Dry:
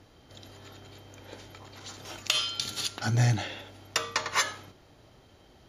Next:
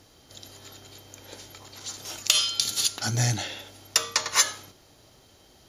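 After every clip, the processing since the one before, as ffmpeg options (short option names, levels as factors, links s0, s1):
-af "bass=f=250:g=-2,treble=f=4000:g=12"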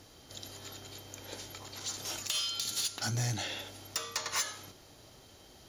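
-af "acompressor=threshold=0.0251:ratio=2,asoftclip=type=tanh:threshold=0.0531"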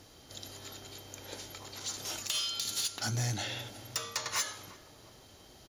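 -filter_complex "[0:a]asplit=2[s0][s1];[s1]adelay=351,lowpass=f=1100:p=1,volume=0.178,asplit=2[s2][s3];[s3]adelay=351,lowpass=f=1100:p=1,volume=0.53,asplit=2[s4][s5];[s5]adelay=351,lowpass=f=1100:p=1,volume=0.53,asplit=2[s6][s7];[s7]adelay=351,lowpass=f=1100:p=1,volume=0.53,asplit=2[s8][s9];[s9]adelay=351,lowpass=f=1100:p=1,volume=0.53[s10];[s0][s2][s4][s6][s8][s10]amix=inputs=6:normalize=0"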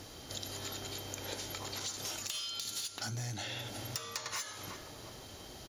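-af "acompressor=threshold=0.00708:ratio=12,volume=2.11"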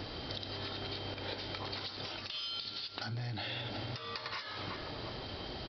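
-af "acompressor=threshold=0.00631:ratio=6,aresample=11025,aresample=44100,volume=2.51"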